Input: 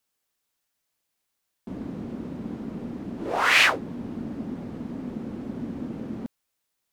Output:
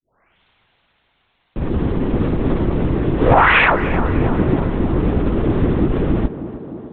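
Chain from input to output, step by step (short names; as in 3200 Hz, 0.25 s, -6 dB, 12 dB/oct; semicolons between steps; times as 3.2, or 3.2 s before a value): tape start at the beginning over 2.25 s; Bessel high-pass 230 Hz; LPC vocoder at 8 kHz whisper; compressor 5:1, threshold -25 dBFS, peak gain reduction 10.5 dB; treble ducked by the level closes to 1800 Hz, closed at -26.5 dBFS; tape echo 0.301 s, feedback 83%, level -11 dB, low-pass 1400 Hz; maximiser +21 dB; gain -1 dB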